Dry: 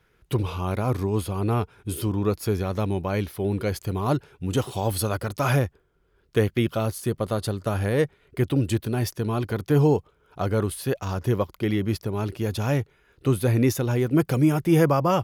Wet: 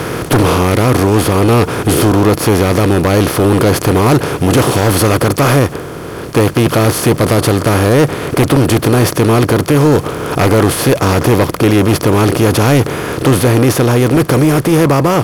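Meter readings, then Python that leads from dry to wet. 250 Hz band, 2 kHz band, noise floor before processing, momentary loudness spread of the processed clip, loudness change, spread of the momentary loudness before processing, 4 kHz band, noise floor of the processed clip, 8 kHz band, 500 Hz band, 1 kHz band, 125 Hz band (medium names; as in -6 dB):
+13.5 dB, +16.5 dB, -65 dBFS, 3 LU, +13.5 dB, 8 LU, +17.5 dB, -25 dBFS, +17.5 dB, +14.0 dB, +15.0 dB, +12.5 dB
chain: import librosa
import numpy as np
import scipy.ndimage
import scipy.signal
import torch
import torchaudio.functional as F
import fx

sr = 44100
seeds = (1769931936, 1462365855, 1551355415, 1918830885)

y = fx.bin_compress(x, sr, power=0.4)
y = fx.rider(y, sr, range_db=5, speed_s=0.5)
y = fx.fold_sine(y, sr, drive_db=9, ceiling_db=-1.5)
y = F.gain(torch.from_numpy(y), -3.0).numpy()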